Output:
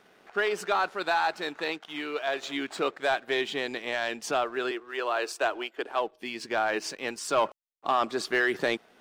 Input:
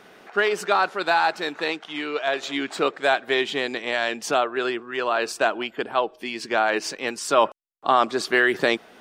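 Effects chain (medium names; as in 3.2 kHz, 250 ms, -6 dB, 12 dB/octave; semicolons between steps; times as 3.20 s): 4.71–5.96 s: steep high-pass 290 Hz 36 dB/octave; waveshaping leveller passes 1; trim -9 dB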